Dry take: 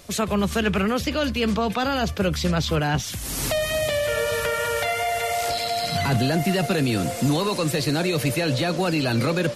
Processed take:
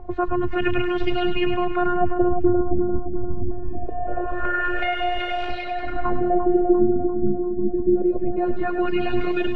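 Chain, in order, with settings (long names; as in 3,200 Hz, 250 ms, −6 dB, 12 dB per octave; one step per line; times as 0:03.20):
RIAA equalisation playback
reverb reduction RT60 1.5 s
high-shelf EQ 7,200 Hz −10.5 dB
in parallel at +2.5 dB: downward compressor, threshold −22 dBFS, peak gain reduction 13.5 dB
on the sum: background noise blue −44 dBFS
phases set to zero 355 Hz
auto-filter low-pass sine 0.24 Hz 210–3,000 Hz
on a send: echo with a time of its own for lows and highs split 1,300 Hz, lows 346 ms, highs 103 ms, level −7 dB
on the sum: level −5 dB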